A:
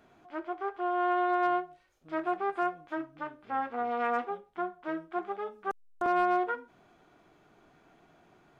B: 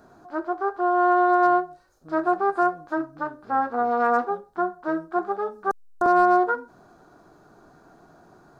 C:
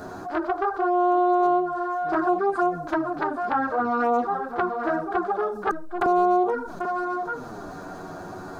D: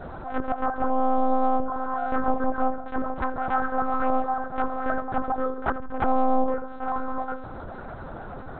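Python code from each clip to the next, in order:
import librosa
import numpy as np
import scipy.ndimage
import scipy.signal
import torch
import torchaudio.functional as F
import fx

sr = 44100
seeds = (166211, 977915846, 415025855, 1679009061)

y1 = fx.band_shelf(x, sr, hz=2600.0, db=-15.0, octaves=1.0)
y1 = y1 * librosa.db_to_amplitude(9.0)
y2 = y1 + 10.0 ** (-13.5 / 20.0) * np.pad(y1, (int(790 * sr / 1000.0), 0))[:len(y1)]
y2 = fx.env_flanger(y2, sr, rest_ms=11.7, full_db=-16.5)
y2 = fx.env_flatten(y2, sr, amount_pct=50)
y3 = fx.echo_feedback(y2, sr, ms=78, feedback_pct=57, wet_db=-18.5)
y3 = fx.lpc_monotone(y3, sr, seeds[0], pitch_hz=260.0, order=8)
y3 = fx.attack_slew(y3, sr, db_per_s=230.0)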